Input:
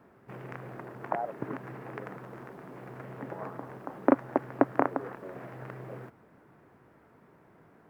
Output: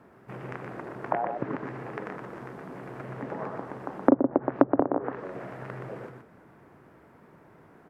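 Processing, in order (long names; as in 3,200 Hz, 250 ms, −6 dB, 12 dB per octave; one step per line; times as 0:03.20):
single-tap delay 122 ms −5.5 dB
treble cut that deepens with the level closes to 570 Hz, closed at −22 dBFS
level +3.5 dB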